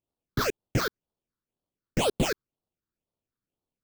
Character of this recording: aliases and images of a low sample rate 2 kHz, jitter 20%; phasing stages 6, 2 Hz, lowest notch 680–2100 Hz

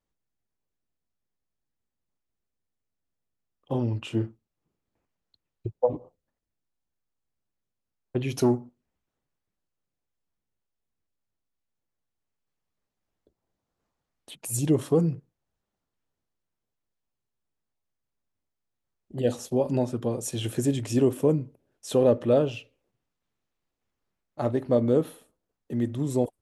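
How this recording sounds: noise floor -85 dBFS; spectral tilt -6.0 dB/octave

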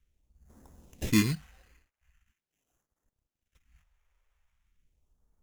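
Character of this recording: aliases and images of a low sample rate 4.5 kHz, jitter 0%; phasing stages 2, 0.42 Hz, lowest notch 200–2500 Hz; Opus

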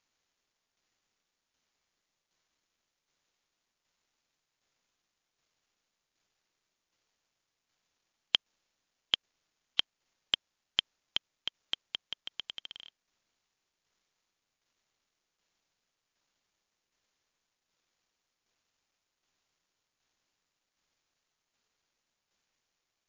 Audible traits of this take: a quantiser's noise floor 12-bit, dither none; tremolo saw down 1.3 Hz, depth 45%; MP3

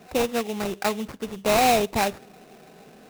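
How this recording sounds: aliases and images of a low sample rate 3.2 kHz, jitter 20%

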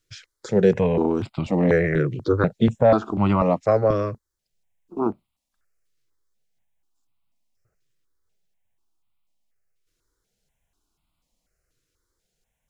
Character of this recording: notches that jump at a steady rate 4.1 Hz 220–1700 Hz

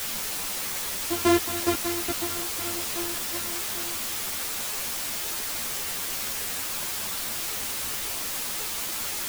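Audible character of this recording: a buzz of ramps at a fixed pitch in blocks of 128 samples; tremolo saw down 2.4 Hz, depth 95%; a quantiser's noise floor 6-bit, dither triangular; a shimmering, thickened sound

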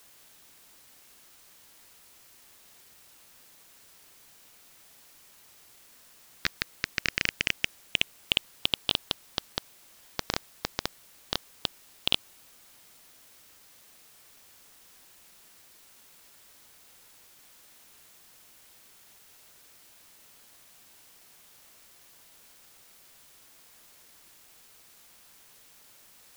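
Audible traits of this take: phasing stages 6, 0.12 Hz, lowest notch 800–2800 Hz; a quantiser's noise floor 10-bit, dither triangular

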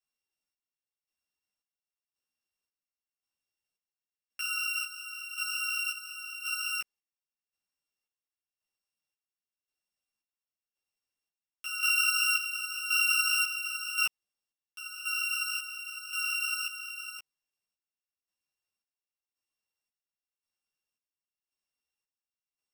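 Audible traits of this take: a buzz of ramps at a fixed pitch in blocks of 16 samples; chopped level 0.93 Hz, depth 65%, duty 50%; a shimmering, thickened sound

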